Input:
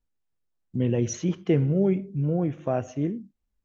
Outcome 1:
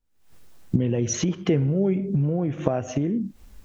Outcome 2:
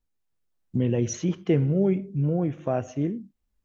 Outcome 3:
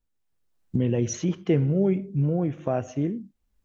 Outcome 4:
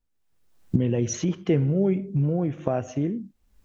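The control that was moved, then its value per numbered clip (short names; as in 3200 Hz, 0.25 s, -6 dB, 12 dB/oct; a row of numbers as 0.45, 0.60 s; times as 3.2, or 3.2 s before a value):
recorder AGC, rising by: 90, 5.4, 14, 34 dB/s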